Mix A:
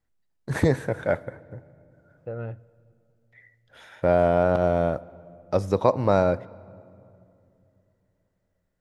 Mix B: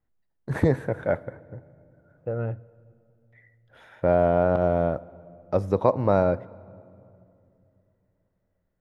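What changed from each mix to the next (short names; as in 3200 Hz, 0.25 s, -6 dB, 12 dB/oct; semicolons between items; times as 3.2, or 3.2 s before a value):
second voice +5.0 dB; master: add bell 6700 Hz -11 dB 2.5 oct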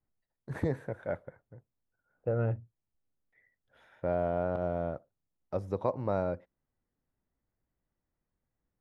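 first voice -9.0 dB; reverb: off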